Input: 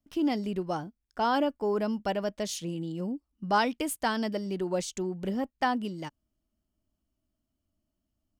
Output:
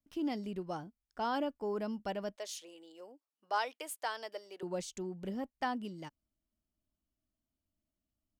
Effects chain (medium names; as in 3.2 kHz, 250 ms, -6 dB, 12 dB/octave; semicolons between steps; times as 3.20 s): 2.36–4.63 s: high-pass 460 Hz 24 dB/octave; trim -8 dB